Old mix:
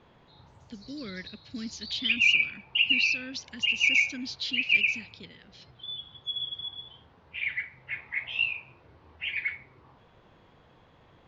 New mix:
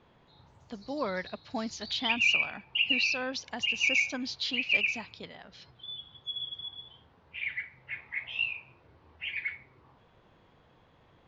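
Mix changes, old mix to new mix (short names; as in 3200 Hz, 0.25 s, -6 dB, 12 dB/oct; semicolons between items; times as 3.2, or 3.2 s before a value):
speech: remove Butterworth band-stop 820 Hz, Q 0.53; background -3.5 dB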